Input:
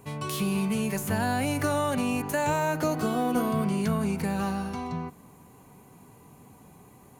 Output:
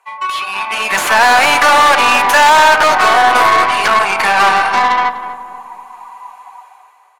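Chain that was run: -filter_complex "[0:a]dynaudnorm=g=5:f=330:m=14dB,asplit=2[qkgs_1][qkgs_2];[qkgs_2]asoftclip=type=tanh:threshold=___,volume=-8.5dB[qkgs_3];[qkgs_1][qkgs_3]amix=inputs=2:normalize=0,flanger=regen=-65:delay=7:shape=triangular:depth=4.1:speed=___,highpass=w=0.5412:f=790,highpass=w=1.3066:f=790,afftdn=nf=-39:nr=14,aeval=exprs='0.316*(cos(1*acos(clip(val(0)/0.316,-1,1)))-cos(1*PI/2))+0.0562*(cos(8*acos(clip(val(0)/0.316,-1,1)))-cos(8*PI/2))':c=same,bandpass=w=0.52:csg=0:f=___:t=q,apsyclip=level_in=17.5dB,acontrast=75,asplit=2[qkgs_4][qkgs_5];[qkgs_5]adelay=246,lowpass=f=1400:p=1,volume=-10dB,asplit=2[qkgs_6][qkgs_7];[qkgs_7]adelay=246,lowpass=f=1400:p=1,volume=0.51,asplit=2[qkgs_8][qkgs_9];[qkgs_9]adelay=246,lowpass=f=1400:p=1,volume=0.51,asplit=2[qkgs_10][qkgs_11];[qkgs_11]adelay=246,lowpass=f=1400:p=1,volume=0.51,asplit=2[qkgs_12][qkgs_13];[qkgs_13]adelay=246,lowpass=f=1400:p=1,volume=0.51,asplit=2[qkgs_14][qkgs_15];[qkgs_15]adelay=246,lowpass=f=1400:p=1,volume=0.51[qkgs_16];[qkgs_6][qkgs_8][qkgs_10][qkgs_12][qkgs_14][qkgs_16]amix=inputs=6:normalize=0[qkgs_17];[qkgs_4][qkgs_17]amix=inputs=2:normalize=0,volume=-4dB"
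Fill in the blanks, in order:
-17dB, 1.8, 1200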